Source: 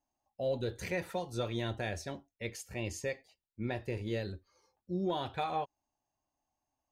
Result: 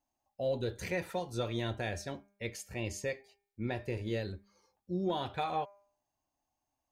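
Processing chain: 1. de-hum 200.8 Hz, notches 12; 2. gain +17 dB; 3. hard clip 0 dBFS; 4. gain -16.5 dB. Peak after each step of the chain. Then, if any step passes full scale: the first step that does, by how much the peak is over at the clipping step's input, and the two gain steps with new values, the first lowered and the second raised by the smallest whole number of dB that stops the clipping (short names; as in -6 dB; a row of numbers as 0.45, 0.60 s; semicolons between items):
-23.0, -6.0, -6.0, -22.5 dBFS; no overload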